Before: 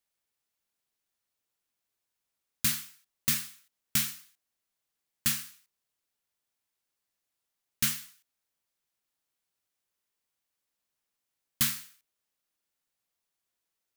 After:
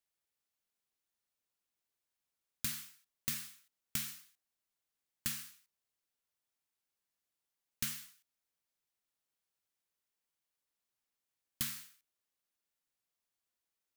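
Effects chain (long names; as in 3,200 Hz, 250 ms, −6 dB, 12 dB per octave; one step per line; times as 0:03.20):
downward compressor, threshold −28 dBFS, peak gain reduction 7 dB
level −5 dB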